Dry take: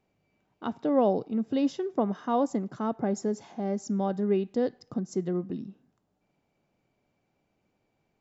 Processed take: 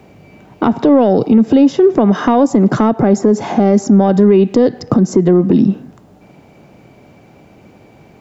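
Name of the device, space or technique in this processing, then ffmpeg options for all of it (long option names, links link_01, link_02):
mastering chain: -filter_complex "[0:a]highpass=48,equalizer=frequency=2300:width_type=o:width=0.77:gain=2,acrossover=split=200|2100[link_01][link_02][link_03];[link_01]acompressor=threshold=-47dB:ratio=4[link_04];[link_02]acompressor=threshold=-34dB:ratio=4[link_05];[link_03]acompressor=threshold=-57dB:ratio=4[link_06];[link_04][link_05][link_06]amix=inputs=3:normalize=0,acompressor=threshold=-36dB:ratio=2.5,asoftclip=type=tanh:threshold=-28.5dB,tiltshelf=frequency=1100:gain=3.5,alimiter=level_in=31dB:limit=-1dB:release=50:level=0:latency=1,volume=-1.5dB"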